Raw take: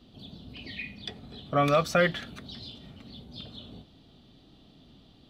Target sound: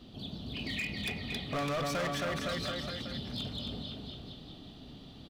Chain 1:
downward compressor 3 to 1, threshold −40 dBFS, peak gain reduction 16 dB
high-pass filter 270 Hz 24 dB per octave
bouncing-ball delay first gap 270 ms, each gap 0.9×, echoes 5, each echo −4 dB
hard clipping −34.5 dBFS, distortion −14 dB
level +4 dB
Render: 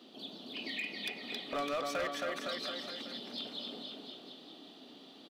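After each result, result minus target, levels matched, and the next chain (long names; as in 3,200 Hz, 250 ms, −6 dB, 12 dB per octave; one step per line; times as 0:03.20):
downward compressor: peak gain reduction +5 dB; 250 Hz band −3.5 dB
downward compressor 3 to 1, threshold −32.5 dBFS, peak gain reduction 11 dB
high-pass filter 270 Hz 24 dB per octave
bouncing-ball delay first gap 270 ms, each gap 0.9×, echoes 5, each echo −4 dB
hard clipping −34.5 dBFS, distortion −8 dB
level +4 dB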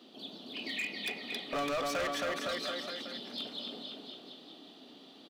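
250 Hz band −3.5 dB
downward compressor 3 to 1, threshold −32.5 dBFS, peak gain reduction 11 dB
bouncing-ball delay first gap 270 ms, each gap 0.9×, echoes 5, each echo −4 dB
hard clipping −34.5 dBFS, distortion −7 dB
level +4 dB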